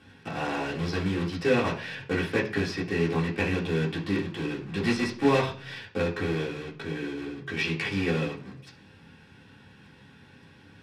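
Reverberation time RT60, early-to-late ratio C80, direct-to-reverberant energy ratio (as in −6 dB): 0.45 s, 16.0 dB, −5.0 dB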